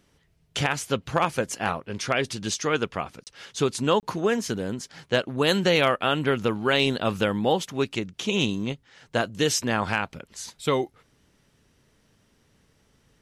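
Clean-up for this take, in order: clip repair -10 dBFS; interpolate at 3.24/4, 28 ms

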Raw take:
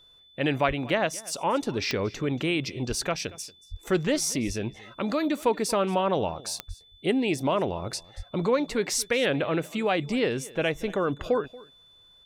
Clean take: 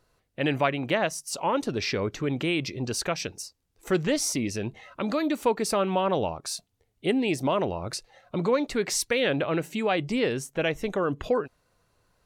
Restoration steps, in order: de-click; notch 3500 Hz, Q 30; de-plosive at 0.67/2.88/3.7/4.46/6.67/8.16; inverse comb 0.232 s -21 dB

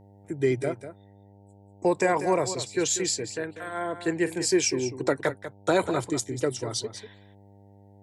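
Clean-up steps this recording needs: de-hum 99.9 Hz, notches 9; inverse comb 0.193 s -11.5 dB

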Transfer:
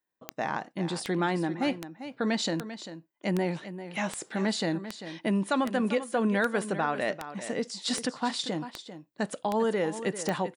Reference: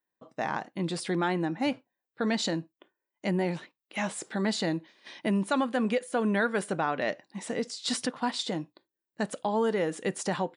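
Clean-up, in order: de-click; inverse comb 0.394 s -12 dB

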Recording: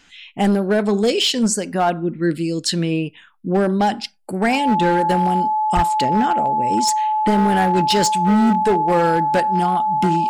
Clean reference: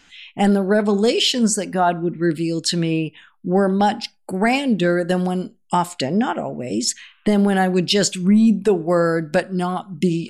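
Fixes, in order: clip repair -11 dBFS; notch 860 Hz, Q 30; 5.75–5.87 HPF 140 Hz 24 dB/oct

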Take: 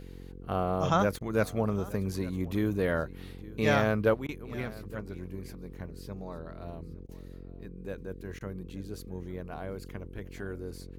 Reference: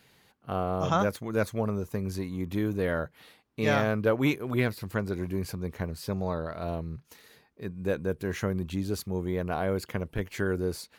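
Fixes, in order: de-hum 45.1 Hz, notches 11; interpolate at 1.19/4.27/7.07/8.39, 16 ms; inverse comb 0.866 s -19.5 dB; gain correction +10.5 dB, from 4.14

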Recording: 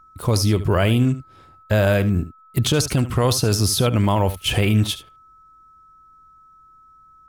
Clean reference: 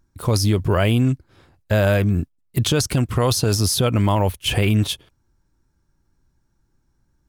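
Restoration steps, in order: notch 1300 Hz, Q 30; inverse comb 74 ms -14.5 dB

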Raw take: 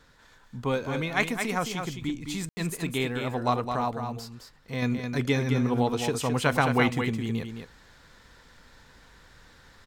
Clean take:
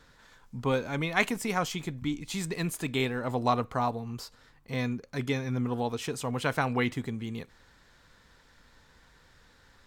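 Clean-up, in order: room tone fill 2.49–2.57; inverse comb 0.214 s -6.5 dB; gain 0 dB, from 4.82 s -4.5 dB

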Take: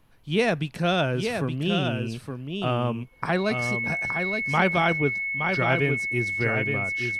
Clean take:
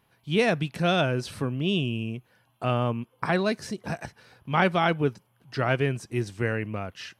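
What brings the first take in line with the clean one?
notch 2200 Hz, Q 30; expander -28 dBFS, range -21 dB; inverse comb 0.869 s -6 dB

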